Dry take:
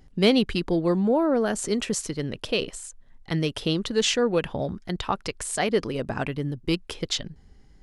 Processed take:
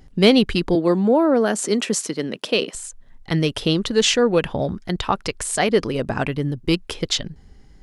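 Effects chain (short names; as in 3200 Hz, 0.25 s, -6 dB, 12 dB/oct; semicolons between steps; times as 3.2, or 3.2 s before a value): 0.75–2.75 HPF 180 Hz 24 dB/oct; gain +5.5 dB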